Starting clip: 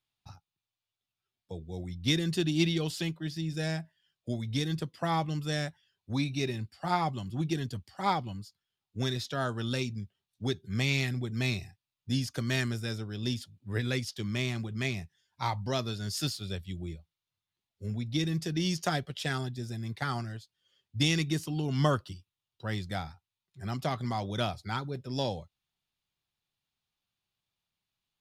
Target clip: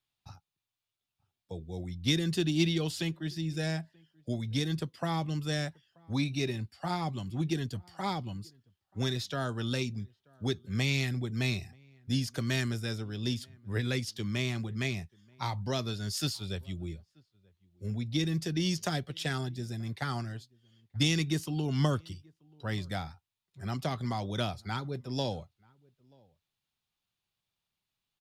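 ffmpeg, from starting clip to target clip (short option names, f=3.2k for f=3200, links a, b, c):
-filter_complex "[0:a]acrossover=split=410|3000[a][b][c];[b]acompressor=threshold=-33dB:ratio=6[d];[a][d][c]amix=inputs=3:normalize=0,asplit=2[e][f];[f]adelay=932.9,volume=-28dB,highshelf=f=4k:g=-21[g];[e][g]amix=inputs=2:normalize=0"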